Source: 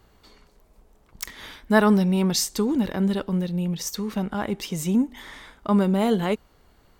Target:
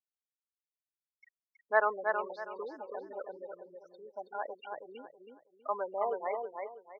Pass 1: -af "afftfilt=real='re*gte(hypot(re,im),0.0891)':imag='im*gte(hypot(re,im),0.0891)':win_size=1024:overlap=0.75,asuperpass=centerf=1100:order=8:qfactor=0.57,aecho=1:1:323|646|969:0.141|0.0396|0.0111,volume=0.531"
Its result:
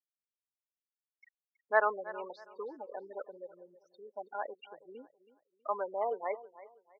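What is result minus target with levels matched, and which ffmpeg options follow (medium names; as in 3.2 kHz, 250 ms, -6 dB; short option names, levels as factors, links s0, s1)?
echo-to-direct -12 dB
-af "afftfilt=real='re*gte(hypot(re,im),0.0891)':imag='im*gte(hypot(re,im),0.0891)':win_size=1024:overlap=0.75,asuperpass=centerf=1100:order=8:qfactor=0.57,aecho=1:1:323|646|969|1292:0.562|0.157|0.0441|0.0123,volume=0.531"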